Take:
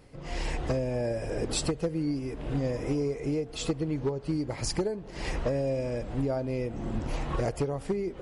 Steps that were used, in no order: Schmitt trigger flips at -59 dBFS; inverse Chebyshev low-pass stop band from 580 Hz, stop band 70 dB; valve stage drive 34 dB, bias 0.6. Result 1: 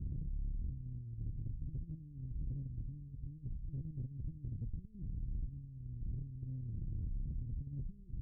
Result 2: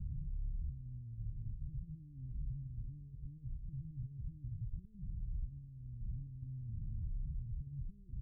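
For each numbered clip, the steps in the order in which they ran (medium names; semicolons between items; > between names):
Schmitt trigger > inverse Chebyshev low-pass > valve stage; Schmitt trigger > valve stage > inverse Chebyshev low-pass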